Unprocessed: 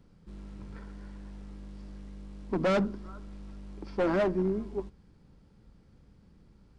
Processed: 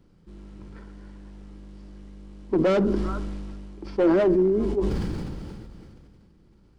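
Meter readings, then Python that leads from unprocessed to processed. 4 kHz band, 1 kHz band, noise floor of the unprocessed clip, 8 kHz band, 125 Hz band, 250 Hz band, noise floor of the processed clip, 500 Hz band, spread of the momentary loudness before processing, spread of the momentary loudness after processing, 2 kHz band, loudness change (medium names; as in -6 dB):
+3.5 dB, +2.5 dB, -60 dBFS, no reading, +6.5 dB, +8.5 dB, -57 dBFS, +8.0 dB, 20 LU, 20 LU, +1.5 dB, +6.5 dB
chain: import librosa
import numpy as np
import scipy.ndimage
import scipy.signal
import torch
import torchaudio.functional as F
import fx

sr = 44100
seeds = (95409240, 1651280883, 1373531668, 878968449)

y = fx.dynamic_eq(x, sr, hz=450.0, q=1.7, threshold_db=-43.0, ratio=4.0, max_db=7)
y = fx.small_body(y, sr, hz=(340.0, 3000.0), ring_ms=45, db=7)
y = fx.sustainer(y, sr, db_per_s=23.0)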